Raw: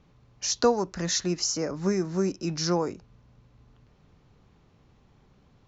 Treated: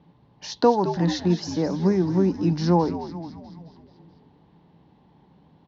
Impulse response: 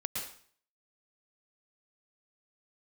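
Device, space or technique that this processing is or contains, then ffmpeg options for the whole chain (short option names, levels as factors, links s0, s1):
frequency-shifting delay pedal into a guitar cabinet: -filter_complex "[0:a]asplit=8[s0][s1][s2][s3][s4][s5][s6][s7];[s1]adelay=216,afreqshift=-85,volume=0.282[s8];[s2]adelay=432,afreqshift=-170,volume=0.164[s9];[s3]adelay=648,afreqshift=-255,volume=0.0944[s10];[s4]adelay=864,afreqshift=-340,volume=0.055[s11];[s5]adelay=1080,afreqshift=-425,volume=0.032[s12];[s6]adelay=1296,afreqshift=-510,volume=0.0184[s13];[s7]adelay=1512,afreqshift=-595,volume=0.0107[s14];[s0][s8][s9][s10][s11][s12][s13][s14]amix=inputs=8:normalize=0,highpass=90,equalizer=f=110:t=q:w=4:g=-6,equalizer=f=170:t=q:w=4:g=8,equalizer=f=300:t=q:w=4:g=6,equalizer=f=880:t=q:w=4:g=9,equalizer=f=1300:t=q:w=4:g=-9,equalizer=f=2400:t=q:w=4:g=-7,lowpass=f=4100:w=0.5412,lowpass=f=4100:w=1.3066,volume=1.33"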